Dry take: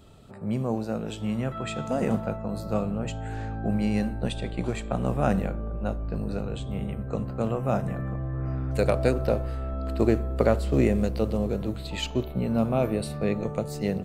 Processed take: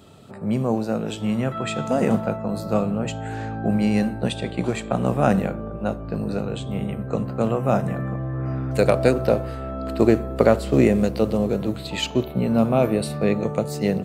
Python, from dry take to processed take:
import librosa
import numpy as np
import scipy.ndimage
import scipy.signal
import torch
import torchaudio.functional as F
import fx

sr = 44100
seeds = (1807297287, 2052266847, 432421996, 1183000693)

y = scipy.signal.sosfilt(scipy.signal.butter(2, 110.0, 'highpass', fs=sr, output='sos'), x)
y = y * 10.0 ** (6.0 / 20.0)